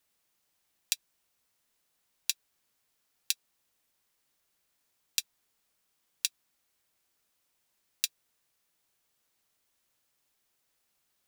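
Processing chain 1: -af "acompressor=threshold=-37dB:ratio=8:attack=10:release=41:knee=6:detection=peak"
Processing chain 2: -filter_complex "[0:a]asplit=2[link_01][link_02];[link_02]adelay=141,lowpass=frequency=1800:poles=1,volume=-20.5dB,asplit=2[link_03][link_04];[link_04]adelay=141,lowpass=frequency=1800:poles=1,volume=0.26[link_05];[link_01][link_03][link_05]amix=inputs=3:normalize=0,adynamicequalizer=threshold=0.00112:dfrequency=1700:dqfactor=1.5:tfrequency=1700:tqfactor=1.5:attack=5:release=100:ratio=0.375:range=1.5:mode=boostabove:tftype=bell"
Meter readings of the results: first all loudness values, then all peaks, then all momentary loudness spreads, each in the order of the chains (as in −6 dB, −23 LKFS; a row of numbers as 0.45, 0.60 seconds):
−38.5, −35.0 LKFS; −3.0, −3.0 dBFS; 0, 0 LU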